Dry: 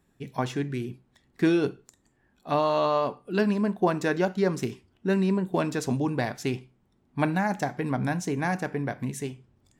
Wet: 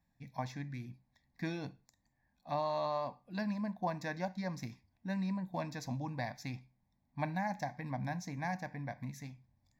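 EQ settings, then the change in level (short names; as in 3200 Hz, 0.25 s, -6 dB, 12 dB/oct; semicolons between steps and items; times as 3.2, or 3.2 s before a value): fixed phaser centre 2000 Hz, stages 8; -8.0 dB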